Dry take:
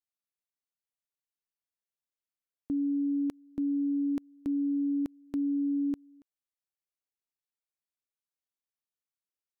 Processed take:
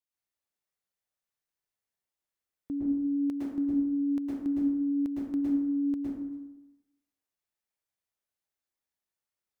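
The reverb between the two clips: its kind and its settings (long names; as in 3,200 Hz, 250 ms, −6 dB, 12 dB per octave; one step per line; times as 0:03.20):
dense smooth reverb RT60 1 s, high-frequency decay 0.5×, pre-delay 100 ms, DRR −6.5 dB
level −3 dB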